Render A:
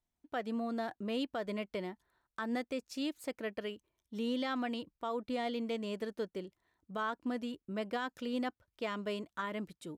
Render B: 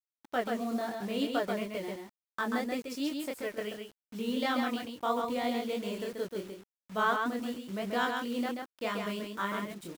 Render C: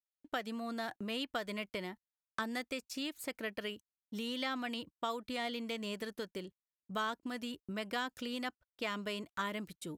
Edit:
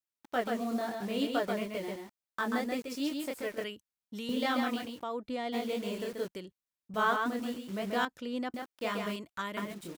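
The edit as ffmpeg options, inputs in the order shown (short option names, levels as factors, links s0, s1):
-filter_complex "[2:a]asplit=3[s0][s1][s2];[0:a]asplit=2[s3][s4];[1:a]asplit=6[s5][s6][s7][s8][s9][s10];[s5]atrim=end=3.642[s11];[s0]atrim=start=3.638:end=4.292[s12];[s6]atrim=start=4.288:end=5.04[s13];[s3]atrim=start=5.02:end=5.54[s14];[s7]atrim=start=5.52:end=6.282[s15];[s1]atrim=start=6.278:end=6.942[s16];[s8]atrim=start=6.938:end=8.052[s17];[s4]atrim=start=8.048:end=8.542[s18];[s9]atrim=start=8.538:end=9.162[s19];[s2]atrim=start=9.158:end=9.572[s20];[s10]atrim=start=9.568[s21];[s11][s12]acrossfade=d=0.004:c1=hsin:c2=hsin[s22];[s22][s13]acrossfade=d=0.004:c1=hsin:c2=hsin[s23];[s23][s14]acrossfade=d=0.02:c1=tri:c2=tri[s24];[s24][s15]acrossfade=d=0.02:c1=tri:c2=tri[s25];[s25][s16]acrossfade=d=0.004:c1=hsin:c2=hsin[s26];[s26][s17]acrossfade=d=0.004:c1=hsin:c2=hsin[s27];[s27][s18]acrossfade=d=0.004:c1=hsin:c2=hsin[s28];[s28][s19]acrossfade=d=0.004:c1=hsin:c2=hsin[s29];[s29][s20]acrossfade=d=0.004:c1=hsin:c2=hsin[s30];[s30][s21]acrossfade=d=0.004:c1=hsin:c2=hsin"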